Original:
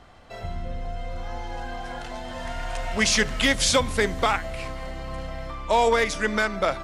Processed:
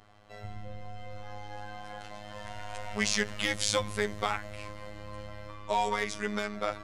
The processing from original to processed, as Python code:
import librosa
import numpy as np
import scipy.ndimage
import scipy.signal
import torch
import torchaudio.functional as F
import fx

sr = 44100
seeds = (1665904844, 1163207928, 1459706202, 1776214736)

y = fx.robotise(x, sr, hz=104.0)
y = y * librosa.db_to_amplitude(-6.0)